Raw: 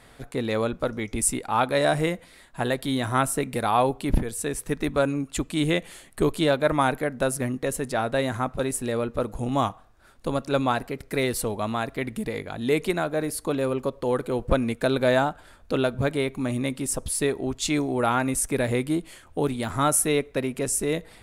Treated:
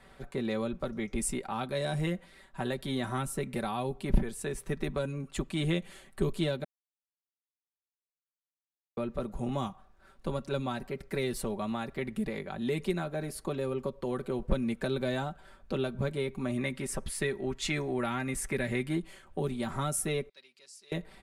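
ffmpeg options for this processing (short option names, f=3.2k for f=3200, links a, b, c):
-filter_complex "[0:a]asettb=1/sr,asplit=3[a][b][c];[a]atrim=end=16.574[d];[b]atrim=start=16.57:end=18.99,asetpts=PTS-STARTPTS,afade=t=in:d=0.004:c=qsin,afade=t=out:st=2.416:d=0.004:c=qsin,equalizer=f=1.9k:t=o:w=0.83:g=9[e];[c]atrim=start=18.986[f];[d][e]acrossfade=d=0.004:c1=hsin:c2=qsin[g];[g][f]acrossfade=d=0.004:c1=qsin:c2=hsin,asettb=1/sr,asplit=3[h][i][j];[h]atrim=end=20.294[k];[i]atrim=start=20.29:end=20.92,asetpts=PTS-STARTPTS,afade=t=in:d=0.004:c=qsin,afade=t=out:st=0.626:d=0.004:c=qsin,bandpass=f=4.6k:t=q:w=4.6[l];[j]atrim=start=20.916[m];[k][l]acrossfade=d=0.004:c1=hsin:c2=qsin[n];[n][m]acrossfade=d=0.004:c1=qsin:c2=hsin,asplit=3[o][p][q];[o]atrim=end=6.64,asetpts=PTS-STARTPTS,afade=t=out:st=6.636:d=0.004:c=hsin[r];[p]atrim=start=6.64:end=8.97,asetpts=PTS-STARTPTS,volume=0[s];[q]atrim=start=8.97,asetpts=PTS-STARTPTS,afade=t=in:d=0.004:c=hsin[t];[r][s][t]concat=n=3:v=0:a=1,highshelf=f=4.9k:g=-9,aecho=1:1:5.2:0.64,acrossover=split=310|3000[u][v][w];[v]acompressor=threshold=-29dB:ratio=6[x];[u][x][w]amix=inputs=3:normalize=0,volume=-5dB"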